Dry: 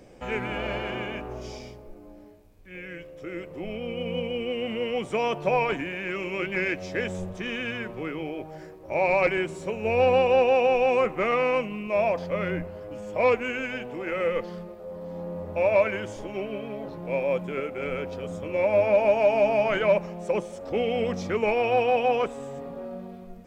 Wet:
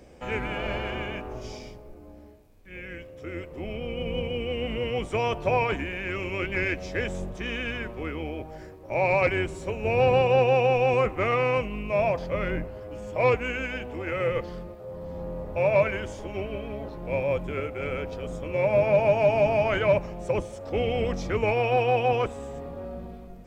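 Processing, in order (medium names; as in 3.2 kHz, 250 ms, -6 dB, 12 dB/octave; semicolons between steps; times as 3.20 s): octave divider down 2 oct, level +3 dB; bass shelf 240 Hz -4.5 dB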